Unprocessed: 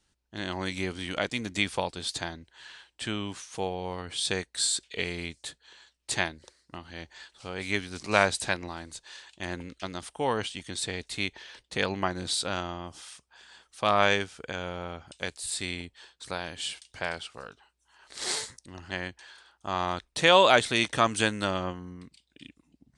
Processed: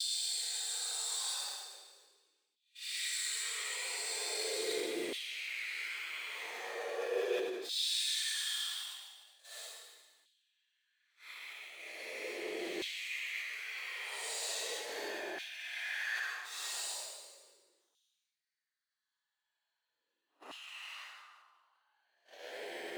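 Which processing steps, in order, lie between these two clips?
reverse delay 0.693 s, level -4 dB; in parallel at -8 dB: fuzz box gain 37 dB, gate -35 dBFS; on the sum: dynamic EQ 440 Hz, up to +6 dB, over -36 dBFS, Q 1.2; compressor 6:1, threshold -27 dBFS, peak gain reduction 17 dB; tone controls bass -15 dB, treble -1 dB; limiter -26 dBFS, peak gain reduction 11.5 dB; Paulstretch 9.7×, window 0.05 s, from 4.63; gate -42 dBFS, range -26 dB; reverb RT60 1.2 s, pre-delay 59 ms, DRR 1.5 dB; LFO high-pass saw down 0.39 Hz 290–3300 Hz; sustainer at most 42 dB/s; gain -6.5 dB

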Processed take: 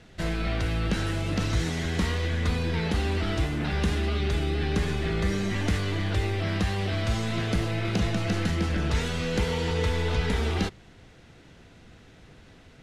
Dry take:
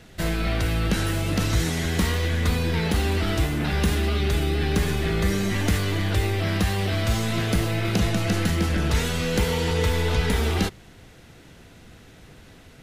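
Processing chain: Bessel low-pass 6200 Hz, order 2; gain -3.5 dB

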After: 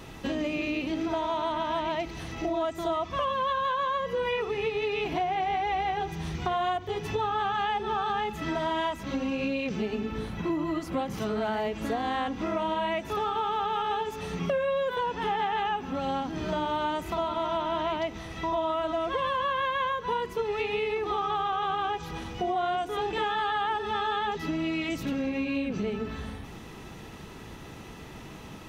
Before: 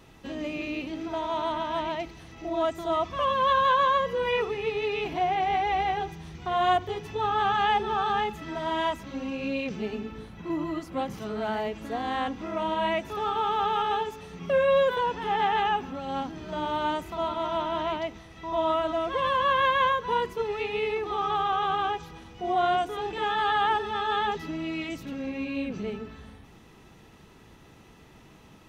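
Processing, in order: compressor 6:1, threshold -36 dBFS, peak gain reduction 16 dB; gain +9 dB

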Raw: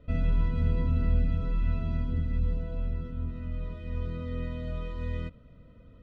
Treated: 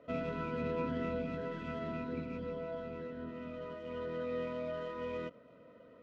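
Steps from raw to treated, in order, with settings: median filter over 15 samples; formant shift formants +3 st; BPF 390–2600 Hz; gain +5 dB

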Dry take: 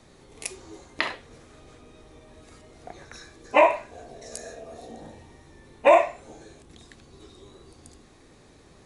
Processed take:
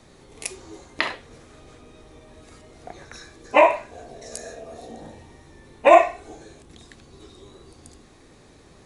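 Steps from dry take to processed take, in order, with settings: 5.89–6.35 comb 2.7 ms; gain +2.5 dB

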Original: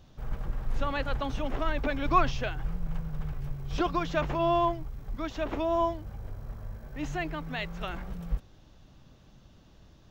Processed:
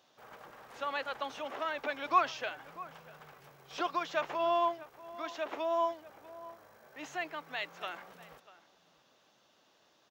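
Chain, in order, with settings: HPF 550 Hz 12 dB/oct; outdoor echo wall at 110 m, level -17 dB; gain -2 dB

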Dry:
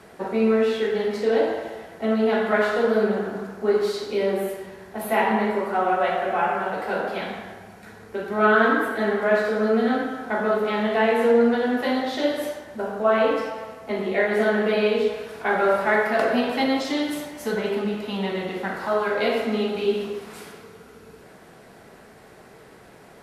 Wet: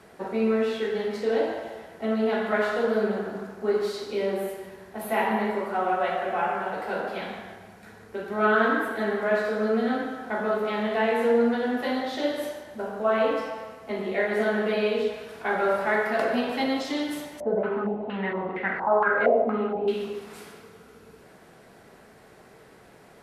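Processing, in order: thinning echo 0.146 s, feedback 42%, level -14.5 dB; 17.4–19.88 stepped low-pass 4.3 Hz 640–2100 Hz; gain -4 dB

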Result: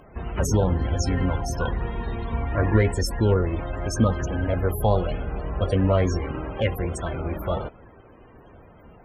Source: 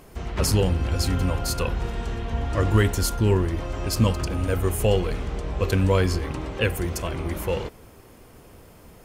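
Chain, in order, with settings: loudest bins only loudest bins 64; added harmonics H 4 -39 dB, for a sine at -7.5 dBFS; formant shift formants +4 st

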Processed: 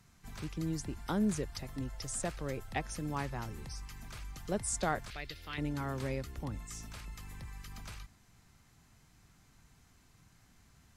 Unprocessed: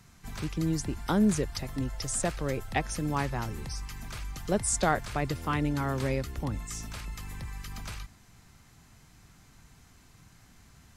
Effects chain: 5.1–5.58 graphic EQ 125/250/500/1000/2000/4000/8000 Hz -12/-11/-4/-12/+3/+9/-10 dB; gain -7 dB

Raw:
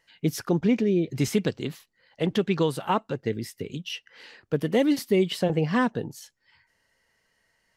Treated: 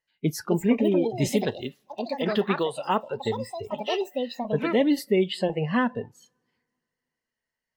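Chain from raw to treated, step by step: echoes that change speed 0.33 s, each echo +5 st, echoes 2, each echo -6 dB; two-slope reverb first 0.22 s, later 2.7 s, from -19 dB, DRR 15.5 dB; spectral noise reduction 18 dB

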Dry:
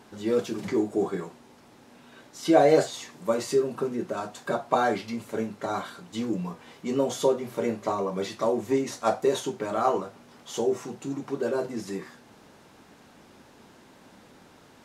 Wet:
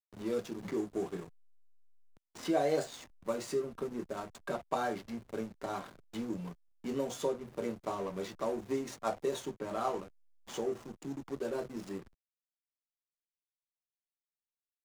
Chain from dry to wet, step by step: high shelf 6100 Hz +9.5 dB; backlash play -30.5 dBFS; three-band squash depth 40%; gain -9 dB

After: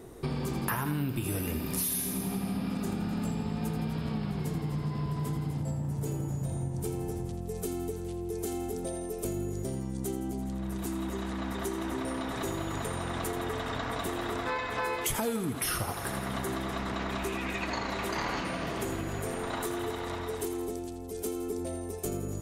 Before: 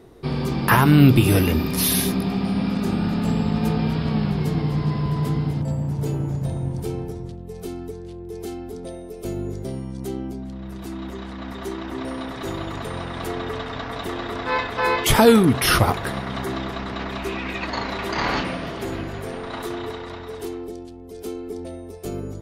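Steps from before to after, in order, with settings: resonant high shelf 5900 Hz +6.5 dB, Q 1.5; on a send: thinning echo 83 ms, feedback 62%, level -9.5 dB; on the sum: compressor 6:1, threshold -30 dBFS, peak gain reduction 20.5 dB

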